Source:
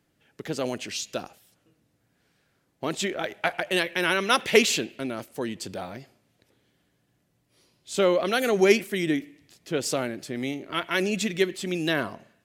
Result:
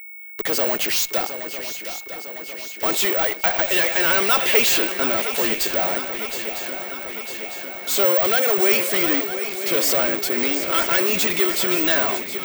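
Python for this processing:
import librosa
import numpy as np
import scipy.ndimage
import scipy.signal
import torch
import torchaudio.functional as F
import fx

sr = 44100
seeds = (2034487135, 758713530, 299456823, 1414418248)

p1 = scipy.signal.sosfilt(scipy.signal.butter(2, 480.0, 'highpass', fs=sr, output='sos'), x)
p2 = fx.fuzz(p1, sr, gain_db=45.0, gate_db=-52.0)
p3 = p1 + (p2 * 10.0 ** (-7.0 / 20.0))
p4 = fx.echo_swing(p3, sr, ms=953, ratio=3, feedback_pct=64, wet_db=-11.0)
p5 = p4 + 10.0 ** (-35.0 / 20.0) * np.sin(2.0 * np.pi * 2200.0 * np.arange(len(p4)) / sr)
p6 = (np.kron(scipy.signal.resample_poly(p5, 1, 2), np.eye(2)[0]) * 2)[:len(p5)]
y = p6 * 10.0 ** (-3.5 / 20.0)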